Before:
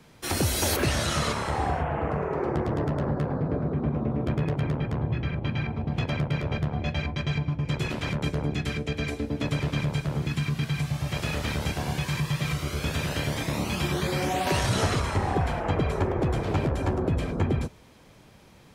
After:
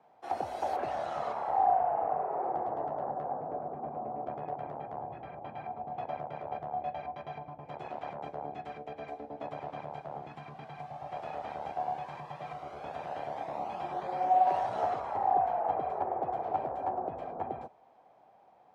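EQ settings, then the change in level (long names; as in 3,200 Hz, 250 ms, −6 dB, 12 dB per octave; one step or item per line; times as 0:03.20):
resonant band-pass 750 Hz, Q 7.1
+7.0 dB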